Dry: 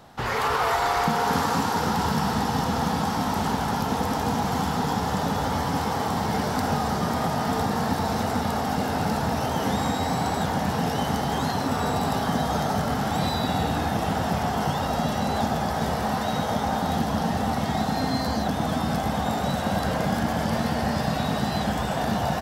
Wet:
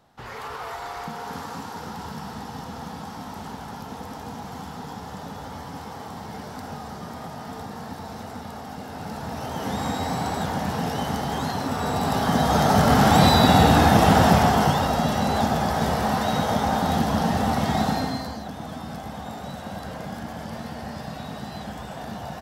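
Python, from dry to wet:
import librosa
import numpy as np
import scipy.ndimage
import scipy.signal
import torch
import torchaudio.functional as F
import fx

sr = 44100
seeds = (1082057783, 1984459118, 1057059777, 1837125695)

y = fx.gain(x, sr, db=fx.line((8.86, -11.0), (9.92, -1.5), (11.77, -1.5), (13.03, 9.5), (14.26, 9.5), (14.96, 2.5), (17.89, 2.5), (18.4, -9.5)))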